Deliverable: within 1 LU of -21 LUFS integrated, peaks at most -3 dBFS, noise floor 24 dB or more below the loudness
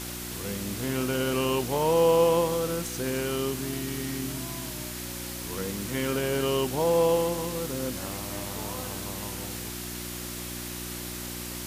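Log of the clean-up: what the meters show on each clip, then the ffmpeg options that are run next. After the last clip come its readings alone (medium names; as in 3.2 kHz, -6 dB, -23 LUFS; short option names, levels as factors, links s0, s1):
hum 60 Hz; highest harmonic 360 Hz; hum level -37 dBFS; noise floor -37 dBFS; noise floor target -53 dBFS; loudness -28.5 LUFS; peak level -10.5 dBFS; loudness target -21.0 LUFS
-> -af "bandreject=f=60:t=h:w=4,bandreject=f=120:t=h:w=4,bandreject=f=180:t=h:w=4,bandreject=f=240:t=h:w=4,bandreject=f=300:t=h:w=4,bandreject=f=360:t=h:w=4"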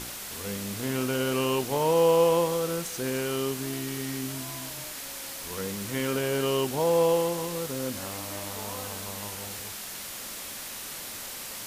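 hum not found; noise floor -39 dBFS; noise floor target -53 dBFS
-> -af "afftdn=nr=14:nf=-39"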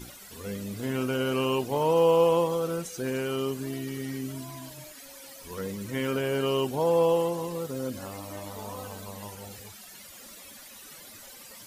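noise floor -47 dBFS; noise floor target -52 dBFS
-> -af "afftdn=nr=6:nf=-47"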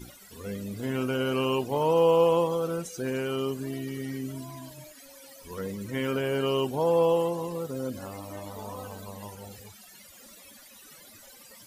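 noise floor -51 dBFS; noise floor target -52 dBFS
-> -af "afftdn=nr=6:nf=-51"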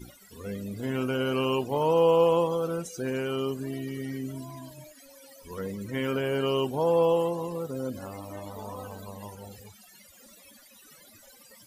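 noise floor -54 dBFS; loudness -28.0 LUFS; peak level -12.0 dBFS; loudness target -21.0 LUFS
-> -af "volume=2.24"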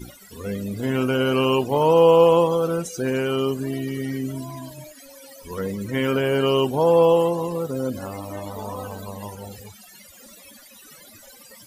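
loudness -21.0 LUFS; peak level -5.0 dBFS; noise floor -47 dBFS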